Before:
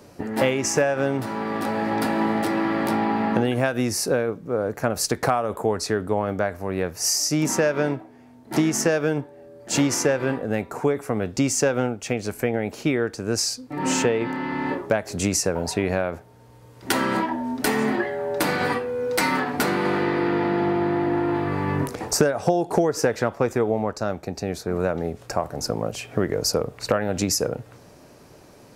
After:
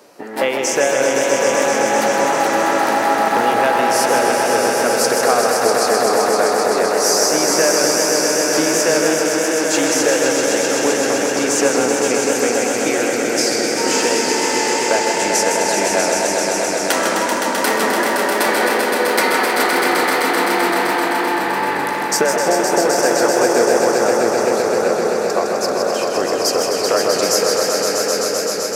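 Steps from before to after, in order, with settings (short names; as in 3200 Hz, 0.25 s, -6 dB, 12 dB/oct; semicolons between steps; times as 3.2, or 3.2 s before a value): HPF 390 Hz 12 dB/oct; swelling echo 0.129 s, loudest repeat 5, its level -6 dB; warbling echo 0.156 s, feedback 51%, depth 118 cents, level -6 dB; gain +4 dB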